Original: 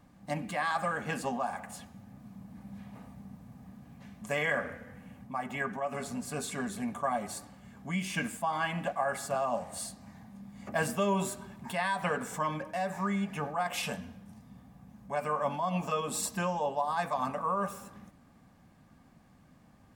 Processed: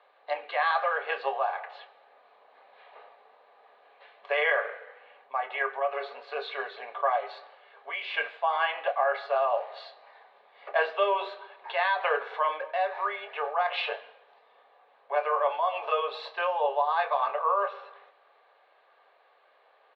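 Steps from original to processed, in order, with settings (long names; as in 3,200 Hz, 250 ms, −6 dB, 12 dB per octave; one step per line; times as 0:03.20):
Chebyshev band-pass filter 420–4,100 Hz, order 5
double-tracking delay 27 ms −11.5 dB
level +5.5 dB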